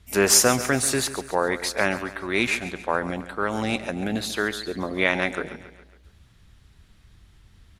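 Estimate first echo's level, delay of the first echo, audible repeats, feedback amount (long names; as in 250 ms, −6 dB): −14.0 dB, 138 ms, 4, 51%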